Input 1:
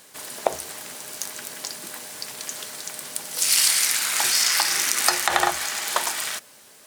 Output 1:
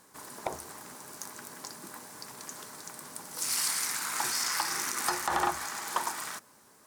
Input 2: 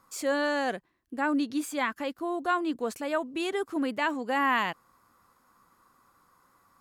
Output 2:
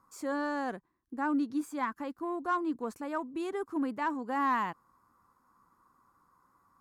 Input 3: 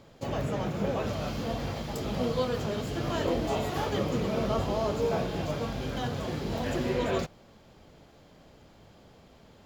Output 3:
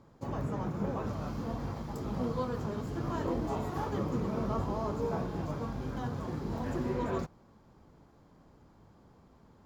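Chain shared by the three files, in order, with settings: EQ curve 320 Hz 0 dB, 630 Hz -7 dB, 990 Hz +2 dB, 3000 Hz -14 dB, 5600 Hz -8 dB; soft clip -18 dBFS; added harmonics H 7 -33 dB, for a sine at -18 dBFS; gain -1.5 dB

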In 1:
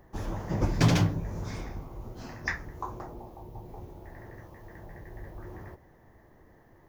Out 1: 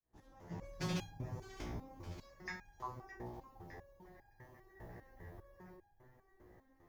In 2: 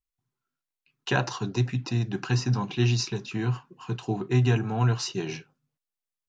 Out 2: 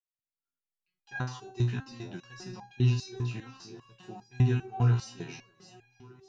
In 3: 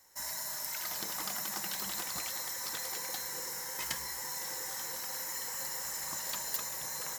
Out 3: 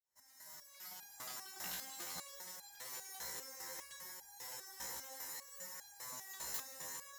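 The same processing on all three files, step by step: opening faded in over 1.14 s; vibrato 2.2 Hz 14 cents; on a send: echo with dull and thin repeats by turns 0.306 s, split 860 Hz, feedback 65%, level -9 dB; on the sum: stepped resonator 5 Hz 60–810 Hz; gain +1 dB

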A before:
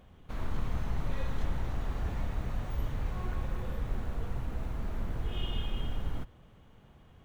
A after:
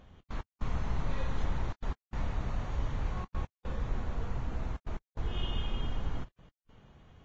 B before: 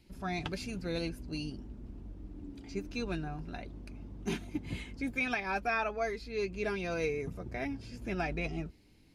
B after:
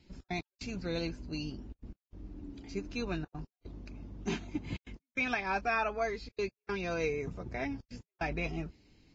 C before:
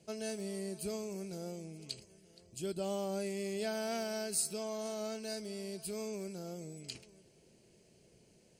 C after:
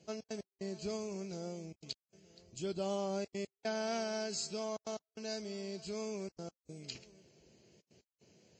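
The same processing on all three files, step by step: dynamic EQ 1000 Hz, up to +3 dB, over -57 dBFS, Q 2.2; step gate "xx.x..xxxxxxxxx" 148 bpm -60 dB; Vorbis 32 kbps 16000 Hz

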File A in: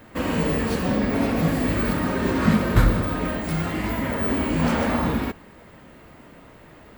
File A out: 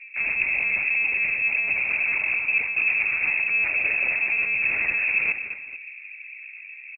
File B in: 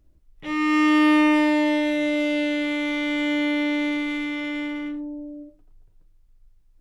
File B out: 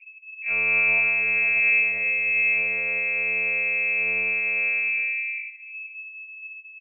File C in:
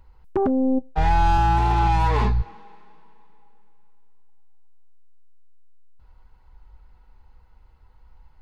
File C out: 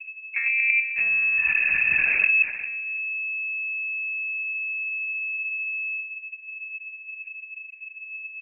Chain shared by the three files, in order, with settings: de-hum 125.1 Hz, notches 7; low-pass opened by the level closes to 420 Hz, open at -17 dBFS; bell 1300 Hz -12.5 dB 1.1 oct; reverse; compressor 12:1, threshold -30 dBFS; reverse; tapped delay 0.226/0.445 s -11/-16.5 dB; plate-style reverb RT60 0.81 s, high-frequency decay 0.9×, DRR 18 dB; monotone LPC vocoder at 8 kHz 240 Hz; inverted band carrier 2600 Hz; gain +8 dB

